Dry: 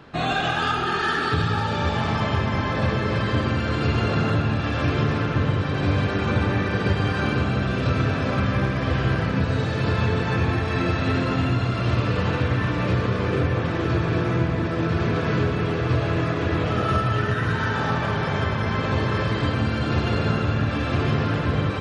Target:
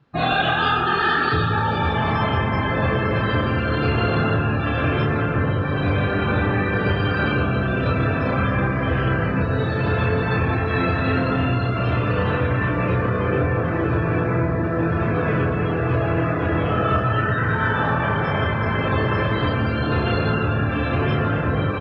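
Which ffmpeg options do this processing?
ffmpeg -i in.wav -filter_complex "[0:a]afftdn=noise_reduction=22:noise_floor=-32,acrossover=split=380[link_01][link_02];[link_01]asoftclip=type=tanh:threshold=-19dB[link_03];[link_02]asplit=2[link_04][link_05];[link_05]adelay=30,volume=-3dB[link_06];[link_04][link_06]amix=inputs=2:normalize=0[link_07];[link_03][link_07]amix=inputs=2:normalize=0,volume=3dB" out.wav

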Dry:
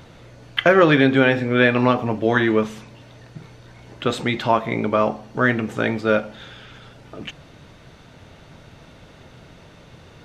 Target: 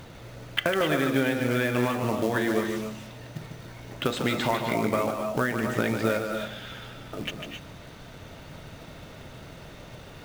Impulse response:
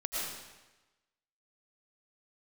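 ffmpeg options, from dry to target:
-filter_complex "[0:a]acompressor=threshold=-22dB:ratio=16,acrusher=bits=4:mode=log:mix=0:aa=0.000001,asplit=2[link_01][link_02];[1:a]atrim=start_sample=2205,atrim=end_sample=6174,adelay=149[link_03];[link_02][link_03]afir=irnorm=-1:irlink=0,volume=-5.5dB[link_04];[link_01][link_04]amix=inputs=2:normalize=0"

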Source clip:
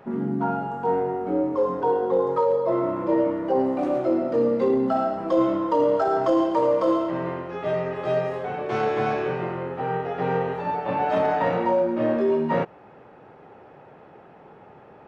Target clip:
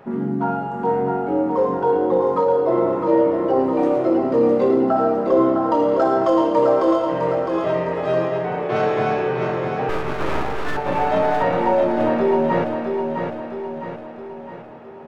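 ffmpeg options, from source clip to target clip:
ffmpeg -i in.wav -filter_complex "[0:a]asettb=1/sr,asplit=3[link_01][link_02][link_03];[link_01]atrim=end=4.894[link_04];[link_02]atrim=start=4.89:end=5.72,asetpts=PTS-STARTPTS,afade=type=in:duration=0.004:curve=qsin,afade=type=out:start_time=0.826:duration=0.004:curve=qsin,highshelf=frequency=2000:width_type=q:width=1.5:gain=-6[link_05];[link_03]atrim=start=5.716[link_06];[link_04][link_05]acrossfade=duration=0.004:curve1=hsin:curve2=qsin[link_07];[link_07][link_06]acrossfade=duration=0.004:curve1=qsin:curve2=hsin,asettb=1/sr,asplit=3[link_08][link_09][link_10];[link_08]atrim=end=8.254[link_11];[link_09]atrim=start=8.25:end=8.76,asetpts=PTS-STARTPTS,afade=type=in:duration=0.004:curve=qsin,afade=type=out:start_time=0.506:duration=0.004:curve=qsin,lowpass=4200[link_12];[link_10]atrim=start=8.756[link_13];[link_11][link_12]acrossfade=duration=0.004:curve1=hsin:curve2=qsin[link_14];[link_14][link_13]acrossfade=duration=0.004:curve1=qsin:curve2=hsin,asettb=1/sr,asplit=3[link_15][link_16][link_17];[link_15]atrim=end=9.894[link_18];[link_16]atrim=start=9.89:end=10.77,asetpts=PTS-STARTPTS,afade=type=in:duration=0.004:curve=qsin,afade=type=out:start_time=0.876:duration=0.004:curve=qsin,aeval=exprs='abs(val(0))':channel_layout=same[link_19];[link_17]atrim=start=10.766[link_20];[link_18][link_19]acrossfade=duration=0.004:curve1=hsin:curve2=qsin[link_21];[link_21][link_20]acrossfade=duration=0.004:curve1=qsin:curve2=hsin,aecho=1:1:659|1318|1977|2636|3295|3954:0.531|0.271|0.138|0.0704|0.0359|0.0183,volume=3dB" out.wav

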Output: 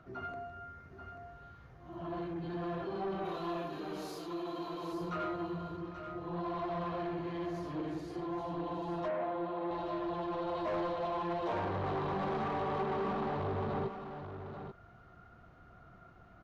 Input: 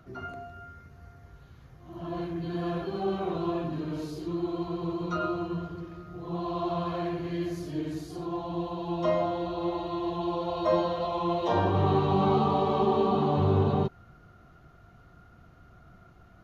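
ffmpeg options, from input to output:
ffmpeg -i in.wav -filter_complex "[0:a]asplit=3[link_01][link_02][link_03];[link_01]afade=type=out:start_time=3.24:duration=0.02[link_04];[link_02]aemphasis=mode=production:type=riaa,afade=type=in:start_time=3.24:duration=0.02,afade=type=out:start_time=4.92:duration=0.02[link_05];[link_03]afade=type=in:start_time=4.92:duration=0.02[link_06];[link_04][link_05][link_06]amix=inputs=3:normalize=0,asoftclip=type=tanh:threshold=-29.5dB,asplit=2[link_07][link_08];[link_08]highpass=frequency=720:poles=1,volume=5dB,asoftclip=type=tanh:threshold=-29.5dB[link_09];[link_07][link_09]amix=inputs=2:normalize=0,lowpass=frequency=1500:poles=1,volume=-6dB,asettb=1/sr,asplit=3[link_10][link_11][link_12];[link_10]atrim=end=9.084[link_13];[link_11]atrim=start=9.08:end=9.71,asetpts=PTS-STARTPTS,afade=type=in:duration=0.004:curve=qsin,afade=type=out:start_time=0.626:duration=0.004:curve=qsin,highpass=220,lowpass=2400[link_14];[link_12]atrim=start=9.706[link_15];[link_13][link_14]acrossfade=duration=0.004:curve1=hsin:curve2=qsin[link_16];[link_16][link_15]acrossfade=duration=0.004:curve1=qsin:curve2=hsin,aecho=1:1:836:0.355" out.wav

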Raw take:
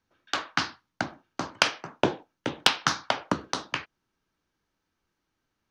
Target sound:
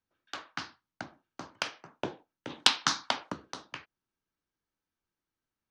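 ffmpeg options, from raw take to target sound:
ffmpeg -i in.wav -filter_complex "[0:a]asplit=3[link_01][link_02][link_03];[link_01]afade=type=out:start_time=2.49:duration=0.02[link_04];[link_02]equalizer=frequency=250:width_type=o:width=1:gain=9,equalizer=frequency=1000:width_type=o:width=1:gain=7,equalizer=frequency=2000:width_type=o:width=1:gain=4,equalizer=frequency=4000:width_type=o:width=1:gain=9,equalizer=frequency=8000:width_type=o:width=1:gain=12,afade=type=in:start_time=2.49:duration=0.02,afade=type=out:start_time=3.29:duration=0.02[link_05];[link_03]afade=type=in:start_time=3.29:duration=0.02[link_06];[link_04][link_05][link_06]amix=inputs=3:normalize=0,volume=-11.5dB" out.wav

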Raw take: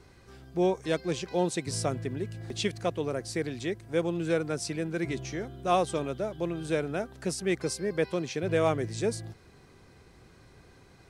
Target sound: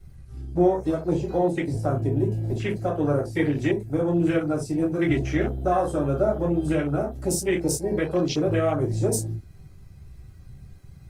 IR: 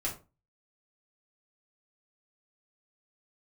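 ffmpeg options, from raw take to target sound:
-filter_complex "[0:a]aemphasis=mode=production:type=50fm,alimiter=limit=-22dB:level=0:latency=1:release=232,asettb=1/sr,asplit=3[link_01][link_02][link_03];[link_01]atrim=end=1.134[link_04];[link_02]atrim=start=1.13:end=3.62,asetpts=PTS-STARTPTS,afade=type=in:duration=0.004:curve=qsin,afade=type=out:start_time=2.486:duration=0.004:curve=qsin,acrossover=split=2800[link_05][link_06];[link_06]acompressor=threshold=-39dB:ratio=4:attack=1:release=60[link_07];[link_05][link_07]amix=inputs=2:normalize=0[link_08];[link_03]atrim=start=3.616[link_09];[link_04][link_08]acrossfade=duration=0.004:curve1=hsin:curve2=qsin[link_10];[link_10][link_09]acrossfade=duration=0.004:curve1=qsin:curve2=hsin[link_11];[1:a]atrim=start_sample=2205,atrim=end_sample=4410[link_12];[link_11][link_12]afir=irnorm=-1:irlink=0,afwtdn=0.0126,volume=6.5dB" -ar 48000 -c:a libopus -b:a 32k

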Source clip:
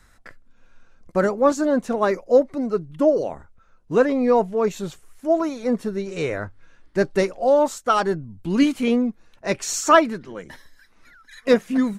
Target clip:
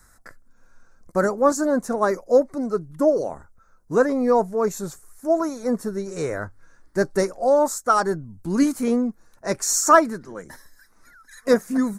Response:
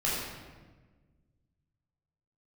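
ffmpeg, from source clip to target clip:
-af "aexciter=amount=8.9:drive=4.9:freq=4300,highshelf=frequency=2200:width_type=q:width=1.5:gain=-11.5,volume=-1.5dB"

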